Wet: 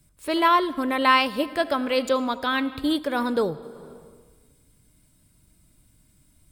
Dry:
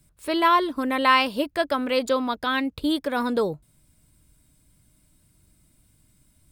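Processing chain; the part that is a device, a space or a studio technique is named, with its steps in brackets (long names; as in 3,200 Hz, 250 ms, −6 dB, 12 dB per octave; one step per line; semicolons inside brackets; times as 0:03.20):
compressed reverb return (on a send at −6.5 dB: convolution reverb RT60 1.4 s, pre-delay 68 ms + downward compressor 10 to 1, threshold −29 dBFS, peak gain reduction 15.5 dB)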